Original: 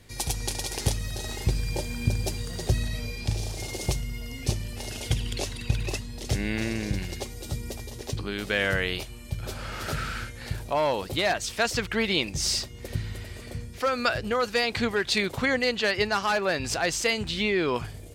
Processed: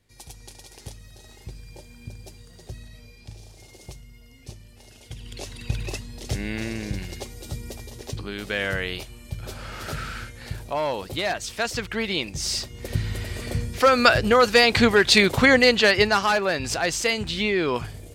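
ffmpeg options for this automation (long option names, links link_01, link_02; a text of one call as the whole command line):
ffmpeg -i in.wav -af "volume=9dB,afade=type=in:start_time=5.1:duration=0.65:silence=0.223872,afade=type=in:start_time=12.48:duration=1.05:silence=0.316228,afade=type=out:start_time=15.63:duration=0.87:silence=0.446684" out.wav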